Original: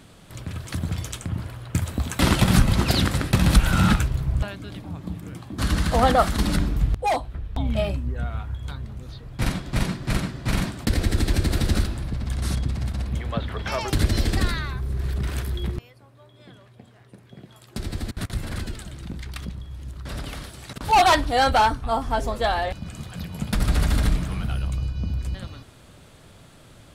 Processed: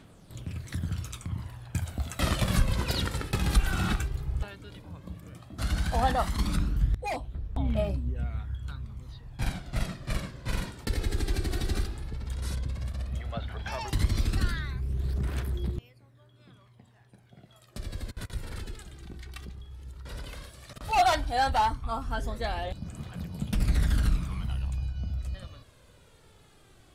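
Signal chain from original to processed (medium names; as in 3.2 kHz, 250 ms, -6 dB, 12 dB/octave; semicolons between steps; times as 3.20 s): phaser 0.13 Hz, delay 2.7 ms, feedback 47%; trim -9 dB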